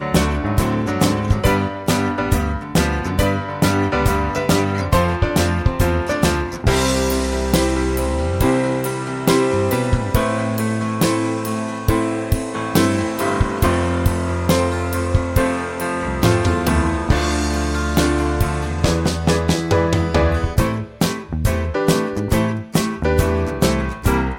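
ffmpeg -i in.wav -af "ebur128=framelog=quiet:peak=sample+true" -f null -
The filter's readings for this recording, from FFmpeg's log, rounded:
Integrated loudness:
  I:         -18.9 LUFS
  Threshold: -28.9 LUFS
Loudness range:
  LRA:         1.3 LU
  Threshold: -38.9 LUFS
  LRA low:   -19.5 LUFS
  LRA high:  -18.2 LUFS
Sample peak:
  Peak:       -2.4 dBFS
True peak:
  Peak:       -2.4 dBFS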